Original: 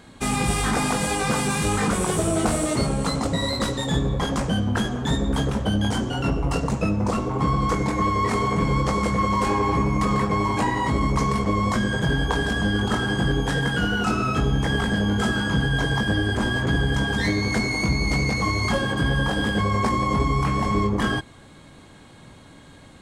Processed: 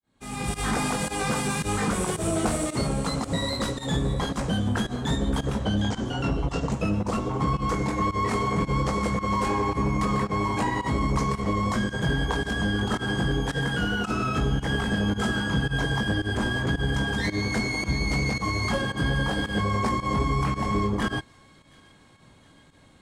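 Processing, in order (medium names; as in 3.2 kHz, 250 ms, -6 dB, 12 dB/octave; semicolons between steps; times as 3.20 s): fade-in on the opening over 0.70 s; 5.61–6.72 s: steep low-pass 7.8 kHz; in parallel at +2.5 dB: peak limiter -18 dBFS, peak gain reduction 9 dB; on the sum: volume shaper 111 bpm, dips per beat 1, -16 dB, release 82 ms; on a send: feedback echo behind a high-pass 718 ms, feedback 58%, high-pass 2 kHz, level -16 dB; on the sum: upward expansion 1.5:1, over -31 dBFS; trim -7 dB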